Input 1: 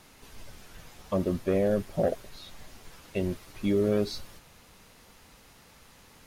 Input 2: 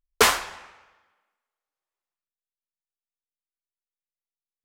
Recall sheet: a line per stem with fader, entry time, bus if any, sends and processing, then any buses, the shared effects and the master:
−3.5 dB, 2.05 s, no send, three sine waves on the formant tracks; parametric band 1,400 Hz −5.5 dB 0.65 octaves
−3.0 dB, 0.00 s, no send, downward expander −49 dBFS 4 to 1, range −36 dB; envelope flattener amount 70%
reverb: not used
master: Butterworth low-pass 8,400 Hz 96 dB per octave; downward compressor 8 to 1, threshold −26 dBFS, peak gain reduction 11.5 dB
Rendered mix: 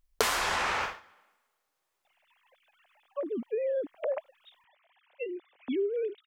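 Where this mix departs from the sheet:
stem 2 −3.0 dB → +6.0 dB
master: missing Butterworth low-pass 8,400 Hz 96 dB per octave

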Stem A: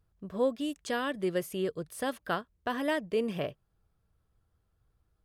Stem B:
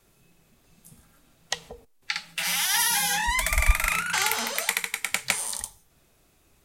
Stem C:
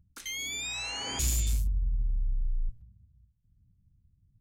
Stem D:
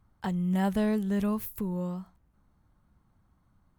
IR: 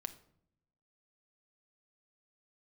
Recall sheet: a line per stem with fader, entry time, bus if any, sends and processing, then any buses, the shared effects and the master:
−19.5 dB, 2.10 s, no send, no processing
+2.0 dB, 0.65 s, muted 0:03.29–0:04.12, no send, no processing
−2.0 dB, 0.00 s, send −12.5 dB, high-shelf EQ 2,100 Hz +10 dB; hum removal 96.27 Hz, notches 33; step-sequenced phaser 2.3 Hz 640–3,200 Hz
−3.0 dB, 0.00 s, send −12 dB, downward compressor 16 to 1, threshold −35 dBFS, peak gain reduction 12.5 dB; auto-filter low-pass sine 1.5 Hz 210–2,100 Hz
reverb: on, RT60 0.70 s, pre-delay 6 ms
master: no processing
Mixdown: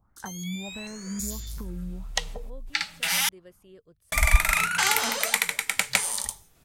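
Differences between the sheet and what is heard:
stem C −2.0 dB → −10.0 dB
reverb return −6.5 dB

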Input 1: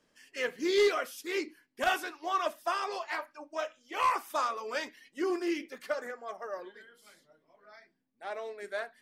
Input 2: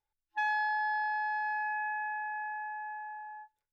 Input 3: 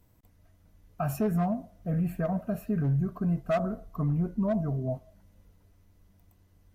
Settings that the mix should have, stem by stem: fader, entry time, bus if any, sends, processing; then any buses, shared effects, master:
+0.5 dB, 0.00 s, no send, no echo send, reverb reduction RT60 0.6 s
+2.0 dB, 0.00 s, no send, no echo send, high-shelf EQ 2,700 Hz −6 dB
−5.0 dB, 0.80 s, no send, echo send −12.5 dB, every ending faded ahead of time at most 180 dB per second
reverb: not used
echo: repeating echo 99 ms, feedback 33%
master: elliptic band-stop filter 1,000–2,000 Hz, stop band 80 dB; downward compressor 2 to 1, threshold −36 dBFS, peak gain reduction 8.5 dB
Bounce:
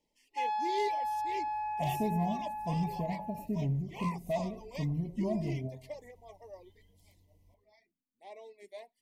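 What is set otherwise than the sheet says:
stem 1 +0.5 dB → −8.5 dB
master: missing downward compressor 2 to 1, threshold −36 dBFS, peak gain reduction 8.5 dB

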